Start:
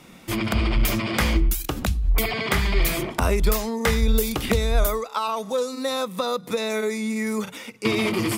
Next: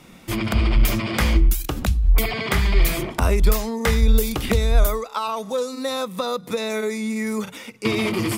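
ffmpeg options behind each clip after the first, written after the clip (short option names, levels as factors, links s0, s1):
-af "lowshelf=f=99:g=5.5"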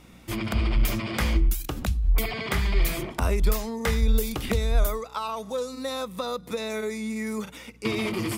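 -af "aeval=exprs='val(0)+0.00398*(sin(2*PI*60*n/s)+sin(2*PI*2*60*n/s)/2+sin(2*PI*3*60*n/s)/3+sin(2*PI*4*60*n/s)/4+sin(2*PI*5*60*n/s)/5)':c=same,volume=0.531"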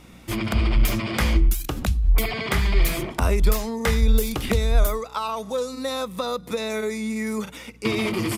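-af "aresample=32000,aresample=44100,volume=1.5"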